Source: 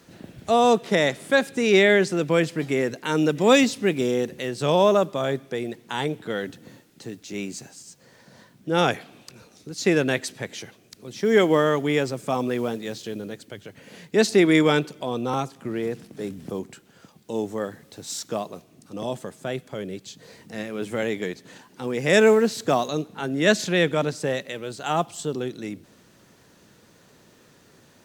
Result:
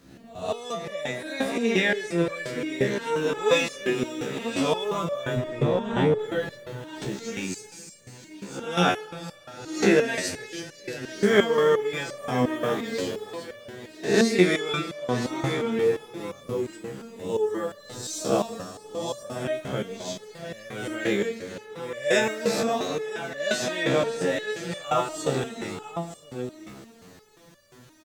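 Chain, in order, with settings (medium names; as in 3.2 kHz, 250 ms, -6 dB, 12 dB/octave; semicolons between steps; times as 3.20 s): reverse spectral sustain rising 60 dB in 0.58 s; bass shelf 110 Hz +5 dB; delay 977 ms -11 dB; gain riding within 4 dB 2 s; 5.36–6.19 s: RIAA curve playback; on a send at -10.5 dB: reverberation RT60 3.2 s, pre-delay 60 ms; on the sum: resonator arpeggio 5.7 Hz 67–580 Hz; trim +6 dB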